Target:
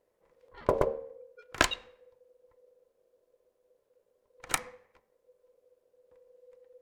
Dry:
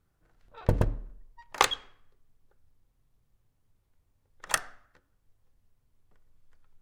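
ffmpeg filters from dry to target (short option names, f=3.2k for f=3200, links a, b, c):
-af "equalizer=f=530:w=6.6:g=8,aeval=exprs='val(0)*sin(2*PI*500*n/s)':c=same"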